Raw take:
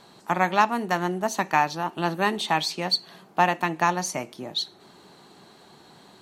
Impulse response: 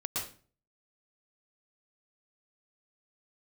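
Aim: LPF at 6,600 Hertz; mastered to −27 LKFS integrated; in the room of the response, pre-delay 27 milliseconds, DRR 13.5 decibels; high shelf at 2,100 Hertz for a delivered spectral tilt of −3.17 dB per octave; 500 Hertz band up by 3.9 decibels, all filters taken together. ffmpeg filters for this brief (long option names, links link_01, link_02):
-filter_complex "[0:a]lowpass=6600,equalizer=frequency=500:width_type=o:gain=5,highshelf=frequency=2100:gain=5.5,asplit=2[link_01][link_02];[1:a]atrim=start_sample=2205,adelay=27[link_03];[link_02][link_03]afir=irnorm=-1:irlink=0,volume=-17.5dB[link_04];[link_01][link_04]amix=inputs=2:normalize=0,volume=-5dB"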